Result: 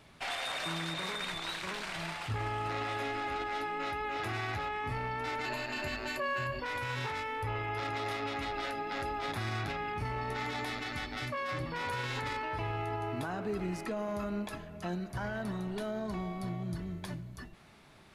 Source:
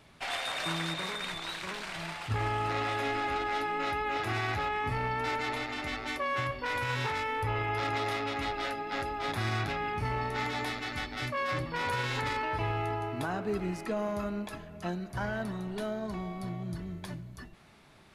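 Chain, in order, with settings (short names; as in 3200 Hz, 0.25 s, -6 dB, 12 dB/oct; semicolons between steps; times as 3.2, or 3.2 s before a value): 5.45–6.6 ripple EQ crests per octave 1.4, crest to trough 13 dB; limiter -27 dBFS, peak gain reduction 7.5 dB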